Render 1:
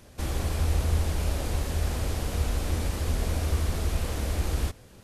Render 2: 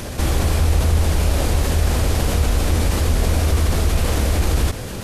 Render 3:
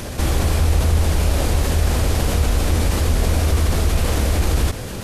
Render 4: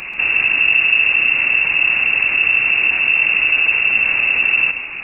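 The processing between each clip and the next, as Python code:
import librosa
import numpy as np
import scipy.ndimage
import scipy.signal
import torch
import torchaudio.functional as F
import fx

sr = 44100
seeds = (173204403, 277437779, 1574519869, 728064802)

y1 = fx.env_flatten(x, sr, amount_pct=50)
y1 = F.gain(torch.from_numpy(y1), 7.0).numpy()
y2 = y1
y3 = fx.freq_invert(y2, sr, carrier_hz=2700)
y3 = y3 + 10.0 ** (-12.5 / 20.0) * np.pad(y3, (int(136 * sr / 1000.0), 0))[:len(y3)]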